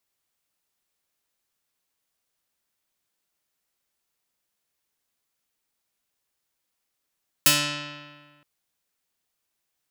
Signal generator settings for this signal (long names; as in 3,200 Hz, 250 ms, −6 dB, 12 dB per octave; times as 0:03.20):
Karplus-Strong string D3, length 0.97 s, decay 1.63 s, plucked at 0.37, medium